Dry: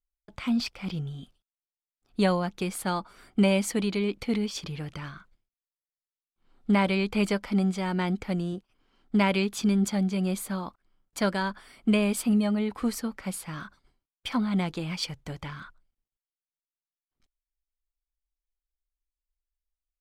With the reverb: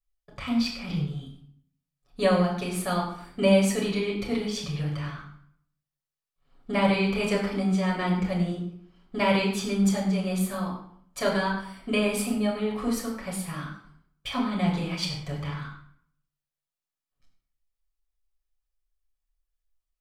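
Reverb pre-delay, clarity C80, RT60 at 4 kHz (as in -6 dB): 7 ms, 7.0 dB, 0.50 s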